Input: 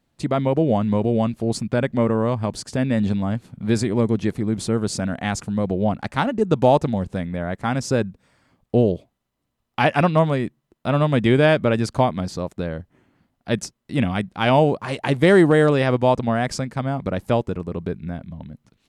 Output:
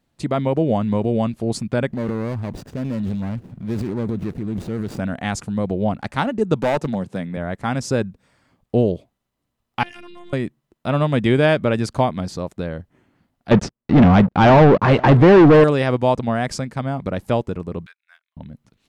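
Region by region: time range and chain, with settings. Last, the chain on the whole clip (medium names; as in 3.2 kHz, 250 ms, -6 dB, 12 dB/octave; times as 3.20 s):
1.92–4.99 s: median filter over 41 samples + compression 1.5:1, threshold -27 dBFS + transient shaper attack -1 dB, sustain +9 dB
6.62–7.37 s: high-pass 120 Hz 24 dB/octave + hard clipper -14.5 dBFS
9.83–10.33 s: amplifier tone stack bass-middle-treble 6-0-2 + robot voice 351 Hz + level flattener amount 100%
13.51–15.64 s: waveshaping leveller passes 5 + tape spacing loss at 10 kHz 31 dB + delay 512 ms -24 dB
17.86–18.37 s: median filter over 5 samples + inverse Chebyshev high-pass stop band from 310 Hz, stop band 70 dB + upward expansion 2.5:1, over -57 dBFS
whole clip: none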